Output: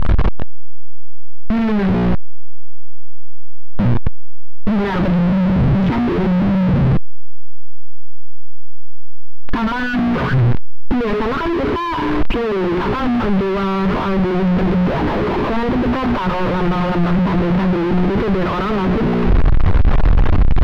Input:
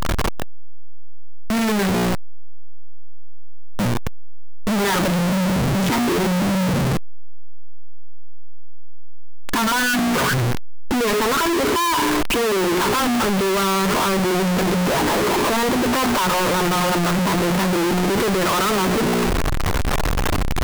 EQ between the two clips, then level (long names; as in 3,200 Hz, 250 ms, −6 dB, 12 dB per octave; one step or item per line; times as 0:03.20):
high-frequency loss of the air 330 metres
low-shelf EQ 180 Hz +11.5 dB
0.0 dB